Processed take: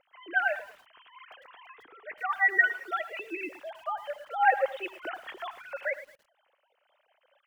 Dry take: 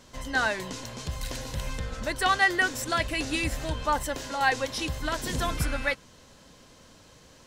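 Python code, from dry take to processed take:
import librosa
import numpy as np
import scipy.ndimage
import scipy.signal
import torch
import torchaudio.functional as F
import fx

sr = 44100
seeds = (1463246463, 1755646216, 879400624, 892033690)

y = fx.sine_speech(x, sr)
y = fx.peak_eq(y, sr, hz=570.0, db=-13.5, octaves=0.38, at=(0.68, 2.93))
y = fx.tremolo_random(y, sr, seeds[0], hz=3.5, depth_pct=55)
y = fx.air_absorb(y, sr, metres=99.0)
y = y + 10.0 ** (-20.5 / 20.0) * np.pad(y, (int(76 * sr / 1000.0), 0))[:len(y)]
y = fx.echo_crushed(y, sr, ms=110, feedback_pct=35, bits=8, wet_db=-14.0)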